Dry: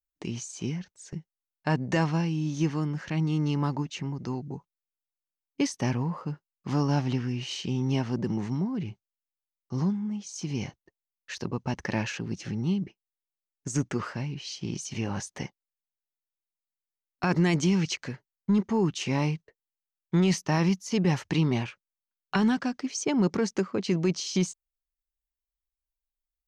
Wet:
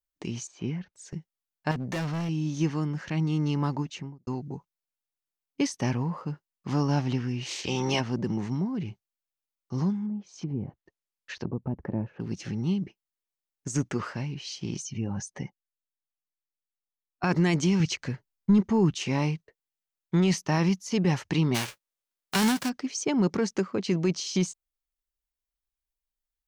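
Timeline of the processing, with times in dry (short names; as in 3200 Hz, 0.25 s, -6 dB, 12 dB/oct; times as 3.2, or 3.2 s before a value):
0.47–0.93 LPF 2800 Hz
1.71–2.29 hard clip -28 dBFS
3.87–4.27 studio fade out
7.45–7.99 spectral limiter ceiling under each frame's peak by 19 dB
10.05–12.2 treble ducked by the level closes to 490 Hz, closed at -28 dBFS
14.82–17.24 spectral contrast raised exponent 1.6
17.8–18.96 low shelf 140 Hz +10 dB
21.54–22.68 spectral whitening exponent 0.3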